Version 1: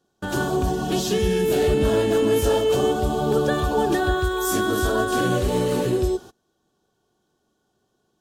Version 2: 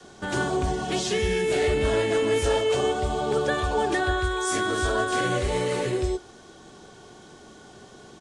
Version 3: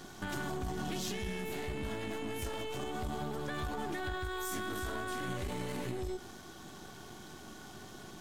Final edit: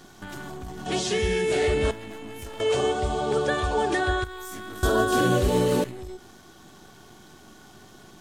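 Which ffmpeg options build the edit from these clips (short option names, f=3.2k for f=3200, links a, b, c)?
-filter_complex "[1:a]asplit=2[a][b];[2:a]asplit=4[c][d][e][f];[c]atrim=end=0.862[g];[a]atrim=start=0.858:end=1.912[h];[d]atrim=start=1.908:end=2.602[i];[b]atrim=start=2.598:end=4.242[j];[e]atrim=start=4.238:end=4.832[k];[0:a]atrim=start=4.828:end=5.842[l];[f]atrim=start=5.838[m];[g][h]acrossfade=d=0.004:c1=hsin:c2=hsin[n];[n][i]acrossfade=d=0.004:c1=hsin:c2=hsin[o];[o][j]acrossfade=d=0.004:c1=hsin:c2=hsin[p];[p][k]acrossfade=d=0.004:c1=hsin:c2=hsin[q];[q][l]acrossfade=d=0.004:c1=hsin:c2=hsin[r];[r][m]acrossfade=d=0.004:c1=hsin:c2=hsin"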